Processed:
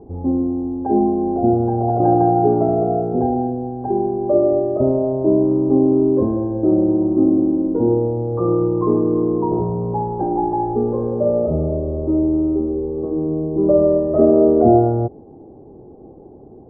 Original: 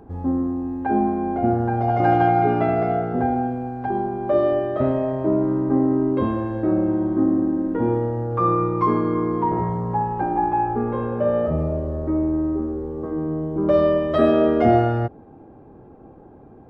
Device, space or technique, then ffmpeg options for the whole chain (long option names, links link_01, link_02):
under water: -af "lowpass=frequency=820:width=0.5412,lowpass=frequency=820:width=1.3066,equalizer=frequency=390:width_type=o:width=0.52:gain=6,volume=2dB"